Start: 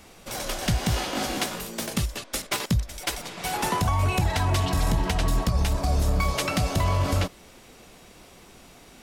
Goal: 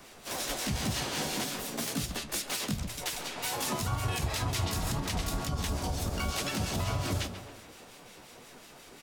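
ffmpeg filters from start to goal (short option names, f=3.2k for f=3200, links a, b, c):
-filter_complex "[0:a]bandreject=f=60:t=h:w=6,bandreject=f=120:t=h:w=6,bandreject=f=180:t=h:w=6,bandreject=f=240:t=h:w=6,bandreject=f=300:t=h:w=6,bandreject=f=360:t=h:w=6,bandreject=f=420:t=h:w=6,bandreject=f=480:t=h:w=6,bandreject=f=540:t=h:w=6,acrossover=split=1500[a][b];[a]aeval=exprs='val(0)*(1-0.5/2+0.5/2*cos(2*PI*5.6*n/s))':c=same[c];[b]aeval=exprs='val(0)*(1-0.5/2-0.5/2*cos(2*PI*5.6*n/s))':c=same[d];[c][d]amix=inputs=2:normalize=0,asplit=2[e][f];[f]adelay=136,lowpass=f=3.7k:p=1,volume=-14dB,asplit=2[g][h];[h]adelay=136,lowpass=f=3.7k:p=1,volume=0.46,asplit=2[i][j];[j]adelay=136,lowpass=f=3.7k:p=1,volume=0.46,asplit=2[k][l];[l]adelay=136,lowpass=f=3.7k:p=1,volume=0.46[m];[e][g][i][k][m]amix=inputs=5:normalize=0,acrossover=split=280|3000[n][o][p];[o]acompressor=threshold=-39dB:ratio=3[q];[n][q][p]amix=inputs=3:normalize=0,asplit=3[r][s][t];[s]asetrate=29433,aresample=44100,atempo=1.49831,volume=-5dB[u];[t]asetrate=55563,aresample=44100,atempo=0.793701,volume=-4dB[v];[r][u][v]amix=inputs=3:normalize=0,lowshelf=f=120:g=-10,alimiter=limit=-21.5dB:level=0:latency=1:release=52,flanger=delay=6.8:depth=7.1:regen=60:speed=2:shape=sinusoidal,volume=4dB"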